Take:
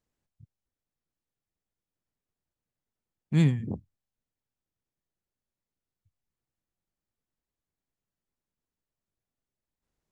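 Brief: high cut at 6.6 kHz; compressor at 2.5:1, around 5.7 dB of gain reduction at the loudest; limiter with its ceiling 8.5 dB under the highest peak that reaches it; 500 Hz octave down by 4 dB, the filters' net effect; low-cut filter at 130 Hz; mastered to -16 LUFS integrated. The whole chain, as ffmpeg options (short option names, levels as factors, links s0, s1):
-af "highpass=130,lowpass=6600,equalizer=f=500:t=o:g=-6,acompressor=threshold=0.0398:ratio=2.5,volume=15.8,alimiter=limit=0.501:level=0:latency=1"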